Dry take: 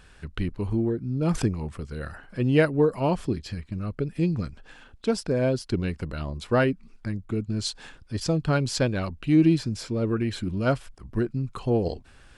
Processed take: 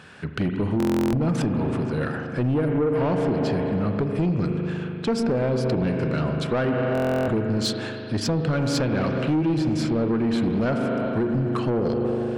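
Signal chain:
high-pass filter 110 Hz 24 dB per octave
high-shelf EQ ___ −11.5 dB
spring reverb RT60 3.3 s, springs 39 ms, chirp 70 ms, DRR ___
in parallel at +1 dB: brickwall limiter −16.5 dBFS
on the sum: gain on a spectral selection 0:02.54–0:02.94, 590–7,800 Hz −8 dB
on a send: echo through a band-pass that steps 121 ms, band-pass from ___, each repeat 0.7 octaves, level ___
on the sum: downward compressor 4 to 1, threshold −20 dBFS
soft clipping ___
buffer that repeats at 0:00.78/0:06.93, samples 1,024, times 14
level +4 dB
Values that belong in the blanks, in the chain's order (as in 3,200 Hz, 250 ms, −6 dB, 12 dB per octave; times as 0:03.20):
5,400 Hz, 6.5 dB, 230 Hz, −9 dB, −21 dBFS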